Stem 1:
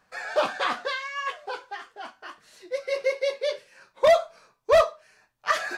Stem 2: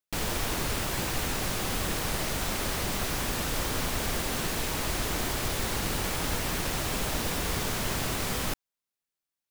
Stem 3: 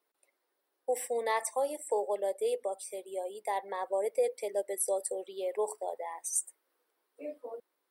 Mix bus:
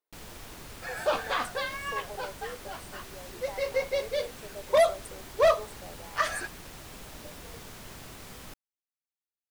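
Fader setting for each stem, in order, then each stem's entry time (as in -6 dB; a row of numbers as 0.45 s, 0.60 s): -3.5 dB, -15.0 dB, -11.0 dB; 0.70 s, 0.00 s, 0.00 s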